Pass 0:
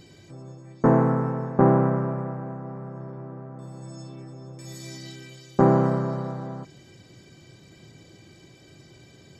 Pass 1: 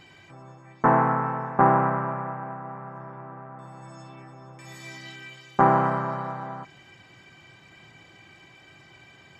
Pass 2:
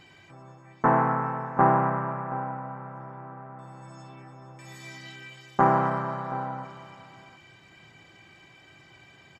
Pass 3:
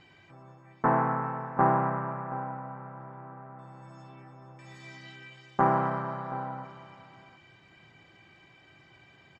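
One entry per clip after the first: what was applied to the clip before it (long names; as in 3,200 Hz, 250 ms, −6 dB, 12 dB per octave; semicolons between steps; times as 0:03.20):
flat-topped bell 1,500 Hz +13.5 dB 2.4 octaves; level −6 dB
single-tap delay 726 ms −15 dB; level −2 dB
high-frequency loss of the air 89 metres; level −3 dB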